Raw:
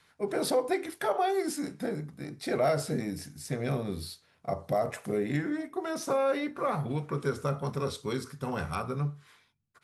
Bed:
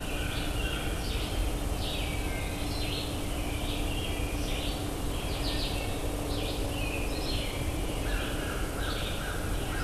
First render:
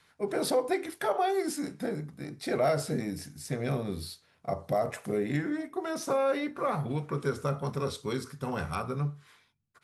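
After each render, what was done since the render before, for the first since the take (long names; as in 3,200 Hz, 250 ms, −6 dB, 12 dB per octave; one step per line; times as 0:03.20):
no processing that can be heard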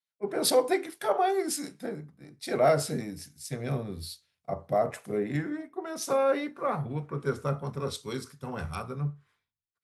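multiband upward and downward expander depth 100%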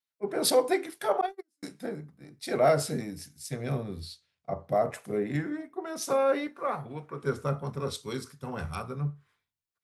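0:01.21–0:01.63: noise gate −24 dBFS, range −49 dB
0:04.00–0:04.69: high-frequency loss of the air 57 metres
0:06.47–0:07.23: low-shelf EQ 240 Hz −11.5 dB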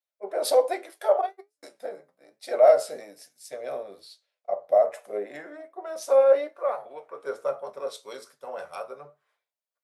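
flanger 1.2 Hz, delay 8 ms, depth 3.8 ms, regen +63%
high-pass with resonance 580 Hz, resonance Q 4.9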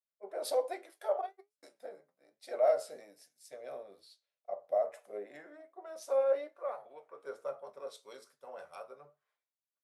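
level −11 dB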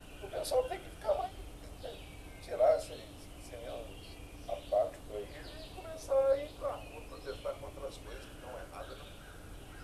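mix in bed −17.5 dB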